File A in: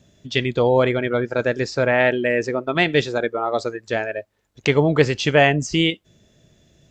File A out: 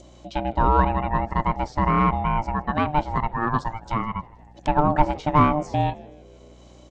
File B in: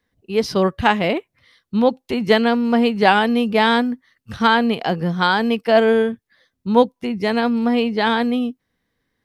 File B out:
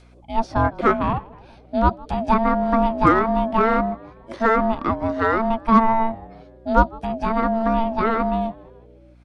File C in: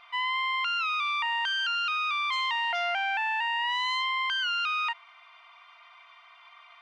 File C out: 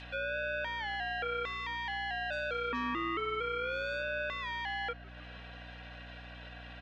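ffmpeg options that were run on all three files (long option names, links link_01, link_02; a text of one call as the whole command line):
ffmpeg -i in.wav -filter_complex "[0:a]acrossover=split=1400[link_01][link_02];[link_02]acompressor=threshold=-42dB:ratio=5[link_03];[link_01][link_03]amix=inputs=2:normalize=0,adynamicequalizer=threshold=0.0355:dfrequency=860:dqfactor=1:tfrequency=860:tqfactor=1:attack=5:release=100:ratio=0.375:range=2:mode=boostabove:tftype=bell,asplit=2[link_04][link_05];[link_05]asplit=4[link_06][link_07][link_08][link_09];[link_06]adelay=158,afreqshift=-93,volume=-22.5dB[link_10];[link_07]adelay=316,afreqshift=-186,volume=-26.9dB[link_11];[link_08]adelay=474,afreqshift=-279,volume=-31.4dB[link_12];[link_09]adelay=632,afreqshift=-372,volume=-35.8dB[link_13];[link_10][link_11][link_12][link_13]amix=inputs=4:normalize=0[link_14];[link_04][link_14]amix=inputs=2:normalize=0,aresample=22050,aresample=44100,aeval=exprs='0.794*(cos(1*acos(clip(val(0)/0.794,-1,1)))-cos(1*PI/2))+0.0126*(cos(8*acos(clip(val(0)/0.794,-1,1)))-cos(8*PI/2))':channel_layout=same,acompressor=mode=upward:threshold=-40dB:ratio=2.5,aeval=exprs='val(0)*sin(2*PI*450*n/s)':channel_layout=same,aeval=exprs='val(0)+0.00355*(sin(2*PI*60*n/s)+sin(2*PI*2*60*n/s)/2+sin(2*PI*3*60*n/s)/3+sin(2*PI*4*60*n/s)/4+sin(2*PI*5*60*n/s)/5)':channel_layout=same" out.wav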